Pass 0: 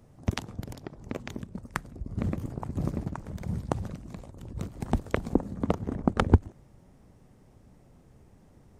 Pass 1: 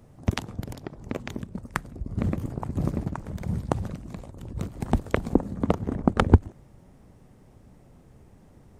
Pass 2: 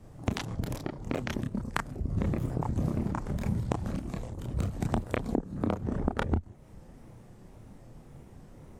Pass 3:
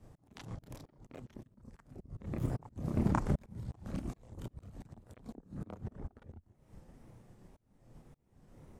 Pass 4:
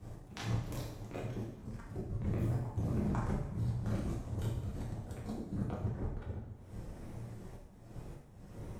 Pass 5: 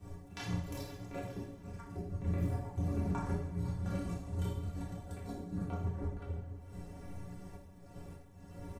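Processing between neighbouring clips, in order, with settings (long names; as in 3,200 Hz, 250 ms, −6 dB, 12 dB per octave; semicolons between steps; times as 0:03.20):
parametric band 5,700 Hz −2 dB; level +3.5 dB
tape wow and flutter 130 cents; multi-voice chorus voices 4, 0.72 Hz, delay 30 ms, depth 5 ms; downward compressor 16 to 1, threshold −30 dBFS, peak gain reduction 18.5 dB; level +5.5 dB
volume swells 415 ms; expander for the loud parts 1.5 to 1, over −59 dBFS; level +3.5 dB
downward compressor 5 to 1, threshold −42 dBFS, peak gain reduction 16 dB; coupled-rooms reverb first 0.7 s, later 3.2 s, from −18 dB, DRR −4.5 dB; level +4 dB
stiff-string resonator 84 Hz, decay 0.23 s, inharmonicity 0.03; single-tap delay 506 ms −15.5 dB; level +7.5 dB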